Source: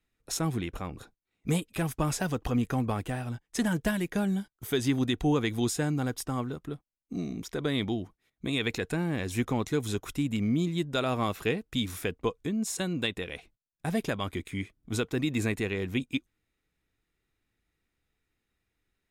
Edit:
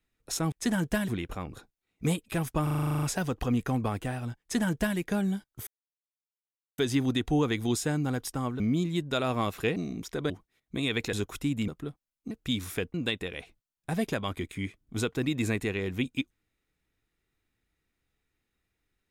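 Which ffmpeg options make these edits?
-filter_complex "[0:a]asplit=21[s0][s1][s2][s3][s4][s5][s6][s7][s8][s9][s10][s11][s12][s13][s14][s15][s16][s17][s18][s19][s20];[s0]atrim=end=0.522[s21];[s1]atrim=start=3.448:end=4.012[s22];[s2]atrim=start=0.518:end=2.112[s23];[s3]atrim=start=2.068:end=2.112[s24];[s4]atrim=start=2.068:end=2.112[s25];[s5]atrim=start=2.068:end=2.112[s26];[s6]atrim=start=2.068:end=2.112[s27];[s7]atrim=start=2.068:end=2.112[s28];[s8]atrim=start=2.068:end=2.112[s29];[s9]atrim=start=2.068:end=2.112[s30];[s10]atrim=start=2.068:end=2.112[s31];[s11]atrim=start=2.068:end=2.112[s32];[s12]atrim=start=2.068:end=4.71,asetpts=PTS-STARTPTS,afade=t=out:st=2.638:d=0.004:c=hsin,apad=pad_dur=1.11[s33];[s13]atrim=start=4.71:end=6.532,asetpts=PTS-STARTPTS,afade=t=in:d=0.004:c=hsin[s34];[s14]atrim=start=10.418:end=11.582[s35];[s15]atrim=start=7.158:end=7.702[s36];[s16]atrim=start=7.998:end=8.832[s37];[s17]atrim=start=9.868:end=10.422[s38];[s18]atrim=start=6.528:end=7.162[s39];[s19]atrim=start=11.578:end=12.212[s40];[s20]atrim=start=12.898[s41];[s21][s22]acrossfade=d=0.004:c1=hsin:c2=hsin[s42];[s42][s23]acrossfade=d=0.004:c1=hsin:c2=hsin[s43];[s43][s24]acrossfade=d=0.004:c1=hsin:c2=hsin[s44];[s44][s25]acrossfade=d=0.004:c1=hsin:c2=hsin[s45];[s45][s26]acrossfade=d=0.004:c1=hsin:c2=hsin[s46];[s46][s27]acrossfade=d=0.004:c1=hsin:c2=hsin[s47];[s47][s28]acrossfade=d=0.004:c1=hsin:c2=hsin[s48];[s48][s29]acrossfade=d=0.004:c1=hsin:c2=hsin[s49];[s49][s30]acrossfade=d=0.004:c1=hsin:c2=hsin[s50];[s50][s31]acrossfade=d=0.004:c1=hsin:c2=hsin[s51];[s51][s32]acrossfade=d=0.004:c1=hsin:c2=hsin[s52];[s33][s34]concat=n=2:v=0:a=1[s53];[s52][s53]acrossfade=d=0.004:c1=hsin:c2=hsin[s54];[s54][s35]acrossfade=d=0.004:c1=hsin:c2=hsin[s55];[s55][s36]acrossfade=d=0.004:c1=hsin:c2=hsin[s56];[s56][s37]acrossfade=d=0.004:c1=hsin:c2=hsin[s57];[s57][s38]acrossfade=d=0.004:c1=hsin:c2=hsin[s58];[s58][s39]acrossfade=d=0.004:c1=hsin:c2=hsin[s59];[s59][s40]acrossfade=d=0.004:c1=hsin:c2=hsin[s60];[s60][s41]acrossfade=d=0.004:c1=hsin:c2=hsin"

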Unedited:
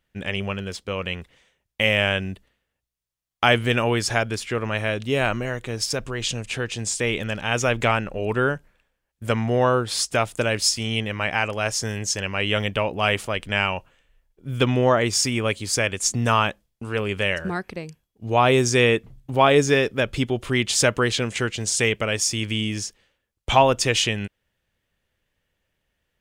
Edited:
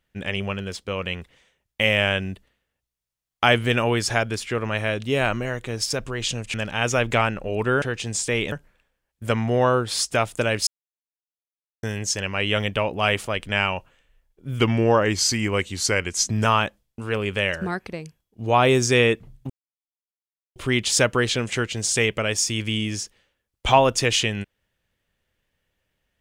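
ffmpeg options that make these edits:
-filter_complex "[0:a]asplit=10[s0][s1][s2][s3][s4][s5][s6][s7][s8][s9];[s0]atrim=end=6.542[s10];[s1]atrim=start=7.238:end=8.522[s11];[s2]atrim=start=6.538:end=7.242[s12];[s3]atrim=start=8.518:end=10.67,asetpts=PTS-STARTPTS,afade=t=out:st=2.148:d=0.004:c=hsin[s13];[s4]atrim=start=10.67:end=11.83,asetpts=PTS-STARTPTS,volume=0[s14];[s5]atrim=start=11.83:end=14.594,asetpts=PTS-STARTPTS,afade=t=in:d=0.004:c=hsin[s15];[s6]atrim=start=14.59:end=16.28,asetpts=PTS-STARTPTS,asetrate=40131,aresample=44100[s16];[s7]atrim=start=16.276:end=19.33,asetpts=PTS-STARTPTS,afade=t=out:st=3.05:d=0.004:c=hsin[s17];[s8]atrim=start=19.33:end=20.39,asetpts=PTS-STARTPTS,volume=0[s18];[s9]atrim=start=20.39,asetpts=PTS-STARTPTS,afade=t=in:d=0.004:c=hsin[s19];[s10][s11]acrossfade=d=0.004:c1=hsin:c2=hsin[s20];[s20][s12]acrossfade=d=0.004:c1=hsin:c2=hsin[s21];[s13][s14][s15]concat=n=3:v=0:a=1[s22];[s21][s22]acrossfade=d=0.004:c1=hsin:c2=hsin[s23];[s23][s16]acrossfade=d=0.004:c1=hsin:c2=hsin[s24];[s17][s18][s19]concat=n=3:v=0:a=1[s25];[s24][s25]acrossfade=d=0.004:c1=hsin:c2=hsin"

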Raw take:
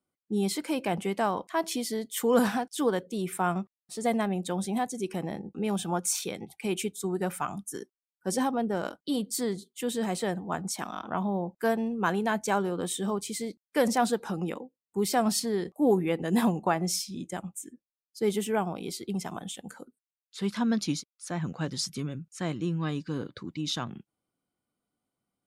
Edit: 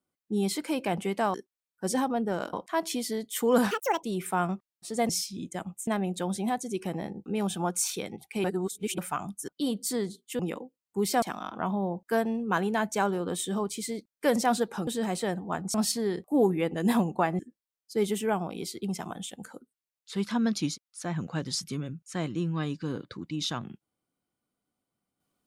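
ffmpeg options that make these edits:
-filter_complex "[0:a]asplit=15[s0][s1][s2][s3][s4][s5][s6][s7][s8][s9][s10][s11][s12][s13][s14];[s0]atrim=end=1.342[s15];[s1]atrim=start=7.768:end=8.962[s16];[s2]atrim=start=1.338:end=2.524[s17];[s3]atrim=start=2.52:end=3.1,asetpts=PTS-STARTPTS,asetrate=79380,aresample=44100[s18];[s4]atrim=start=3.096:end=4.162[s19];[s5]atrim=start=16.868:end=17.652[s20];[s6]atrim=start=4.158:end=6.732[s21];[s7]atrim=start=6.728:end=7.272,asetpts=PTS-STARTPTS,areverse[s22];[s8]atrim=start=7.268:end=7.772[s23];[s9]atrim=start=8.958:end=9.872[s24];[s10]atrim=start=14.388:end=15.222[s25];[s11]atrim=start=10.738:end=14.392[s26];[s12]atrim=start=9.868:end=10.742[s27];[s13]atrim=start=15.218:end=16.872[s28];[s14]atrim=start=17.648[s29];[s15][s16]acrossfade=d=0.004:c1=hsin:c2=hsin[s30];[s30][s17]acrossfade=d=0.004:c1=hsin:c2=hsin[s31];[s31][s18]acrossfade=d=0.004:c1=hsin:c2=hsin[s32];[s32][s19]acrossfade=d=0.004:c1=hsin:c2=hsin[s33];[s33][s20]acrossfade=d=0.004:c1=hsin:c2=hsin[s34];[s34][s21]acrossfade=d=0.004:c1=hsin:c2=hsin[s35];[s35][s22]acrossfade=d=0.004:c1=hsin:c2=hsin[s36];[s36][s23]acrossfade=d=0.004:c1=hsin:c2=hsin[s37];[s37][s24]acrossfade=d=0.004:c1=hsin:c2=hsin[s38];[s38][s25]acrossfade=d=0.004:c1=hsin:c2=hsin[s39];[s39][s26]acrossfade=d=0.004:c1=hsin:c2=hsin[s40];[s40][s27]acrossfade=d=0.004:c1=hsin:c2=hsin[s41];[s41][s28]acrossfade=d=0.004:c1=hsin:c2=hsin[s42];[s42][s29]acrossfade=d=0.004:c1=hsin:c2=hsin"

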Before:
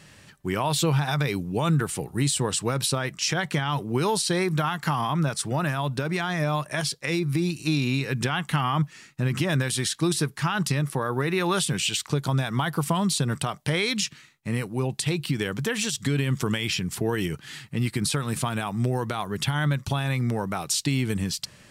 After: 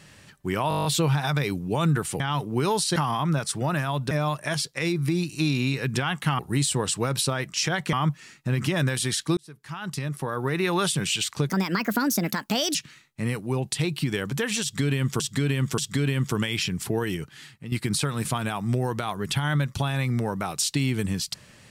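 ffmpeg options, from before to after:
-filter_complex "[0:a]asplit=20[s0][s1][s2][s3][s4][s5][s6][s7][s8][s9][s10][s11][s12][s13][s14][s15][s16][s17][s18][s19];[s0]atrim=end=0.712[s20];[s1]atrim=start=0.688:end=0.712[s21];[s2]atrim=start=0.688:end=0.712[s22];[s3]atrim=start=0.688:end=0.712[s23];[s4]atrim=start=0.688:end=0.712[s24];[s5]atrim=start=0.688:end=0.712[s25];[s6]atrim=start=0.688:end=0.712[s26];[s7]atrim=start=0.688:end=0.712[s27];[s8]atrim=start=0.688:end=2.042[s28];[s9]atrim=start=3.578:end=4.342[s29];[s10]atrim=start=4.858:end=6.012[s30];[s11]atrim=start=6.378:end=8.662[s31];[s12]atrim=start=2.038:end=3.582[s32];[s13]atrim=start=8.658:end=10.1,asetpts=PTS-STARTPTS,afade=t=out:st=1.438:d=0.004:c=hsin[s33];[s14]atrim=start=10.1:end=12.224,asetpts=PTS-STARTPTS,afade=t=in:d=1.23[s34];[s15]atrim=start=12.22:end=14.02,asetpts=PTS-STARTPTS,asetrate=63063,aresample=44100,atrim=end_sample=55510,asetpts=PTS-STARTPTS[s35];[s16]atrim=start=14.016:end=16.472[s36];[s17]atrim=start=15.888:end=16.472[s37];[s18]atrim=start=15.888:end=17.83,asetpts=PTS-STARTPTS,afade=t=out:st=1.132:d=0.81:silence=0.266073[s38];[s19]atrim=start=17.83,asetpts=PTS-STARTPTS,afade=t=in:d=0.004:c=hsin:silence=0.266073[s39];[s20][s21]acrossfade=d=0.004:c1=hsin:c2=hsin[s40];[s40][s22]acrossfade=d=0.004:c1=hsin:c2=hsin[s41];[s41][s23]acrossfade=d=0.004:c1=hsin:c2=hsin[s42];[s42][s24]acrossfade=d=0.004:c1=hsin:c2=hsin[s43];[s43][s25]acrossfade=d=0.004:c1=hsin:c2=hsin[s44];[s44][s26]acrossfade=d=0.004:c1=hsin:c2=hsin[s45];[s45][s27]acrossfade=d=0.004:c1=hsin:c2=hsin[s46];[s46][s28]acrossfade=d=0.004:c1=hsin:c2=hsin[s47];[s47][s29]acrossfade=d=0.004:c1=hsin:c2=hsin[s48];[s48][s30]acrossfade=d=0.004:c1=hsin:c2=hsin[s49];[s49][s31]acrossfade=d=0.004:c1=hsin:c2=hsin[s50];[s50][s32]acrossfade=d=0.004:c1=hsin:c2=hsin[s51];[s33][s34]concat=n=2:v=0:a=1[s52];[s51][s52]acrossfade=d=0.004:c1=hsin:c2=hsin[s53];[s53][s35]acrossfade=d=0.004:c1=hsin:c2=hsin[s54];[s54][s36]acrossfade=d=0.004:c1=hsin:c2=hsin[s55];[s55][s37]acrossfade=d=0.004:c1=hsin:c2=hsin[s56];[s38][s39]concat=n=2:v=0:a=1[s57];[s56][s57]acrossfade=d=0.004:c1=hsin:c2=hsin"

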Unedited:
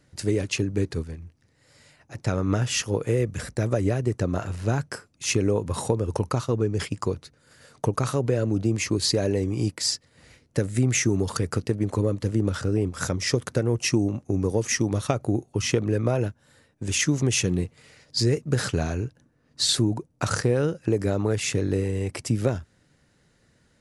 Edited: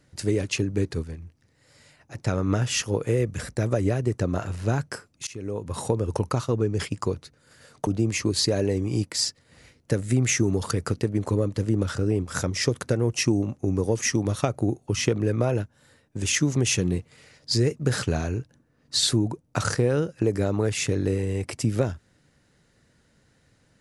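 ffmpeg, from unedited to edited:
-filter_complex "[0:a]asplit=3[s0][s1][s2];[s0]atrim=end=5.27,asetpts=PTS-STARTPTS,afade=t=out:st=5.266:d=0.004:c=hsin:silence=0.0630957[s3];[s1]atrim=start=5.27:end=7.872,asetpts=PTS-STARTPTS,afade=t=in:d=0.7:silence=0.0630957[s4];[s2]atrim=start=8.528[s5];[s3][s4]concat=n=2:v=0:a=1[s6];[s6][s5]acrossfade=d=0.004:c1=hsin:c2=hsin"

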